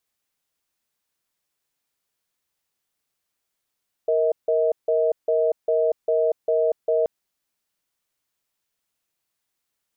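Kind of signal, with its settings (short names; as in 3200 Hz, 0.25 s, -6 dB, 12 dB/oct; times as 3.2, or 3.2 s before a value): cadence 467 Hz, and 637 Hz, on 0.24 s, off 0.16 s, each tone -20 dBFS 2.98 s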